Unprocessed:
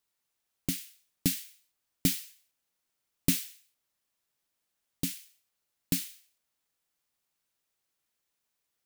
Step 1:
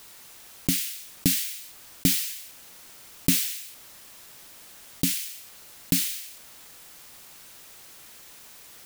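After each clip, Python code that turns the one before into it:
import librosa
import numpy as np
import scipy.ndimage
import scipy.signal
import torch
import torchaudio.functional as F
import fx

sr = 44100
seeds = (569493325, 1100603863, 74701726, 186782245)

y = fx.env_flatten(x, sr, amount_pct=50)
y = F.gain(torch.from_numpy(y), 3.5).numpy()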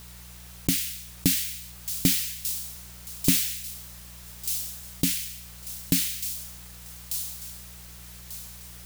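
y = fx.dmg_buzz(x, sr, base_hz=60.0, harmonics=3, level_db=-48.0, tilt_db=-5, odd_only=False)
y = fx.echo_wet_highpass(y, sr, ms=1192, feedback_pct=34, hz=4600.0, wet_db=-5.0)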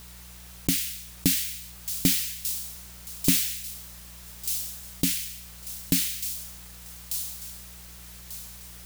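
y = fx.peak_eq(x, sr, hz=110.0, db=-4.5, octaves=0.63)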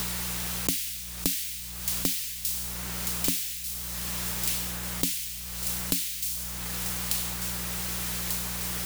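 y = fx.notch(x, sr, hz=670.0, q=19.0)
y = fx.band_squash(y, sr, depth_pct=100)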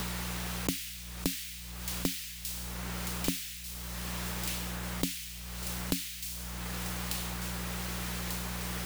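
y = fx.high_shelf(x, sr, hz=4000.0, db=-10.0)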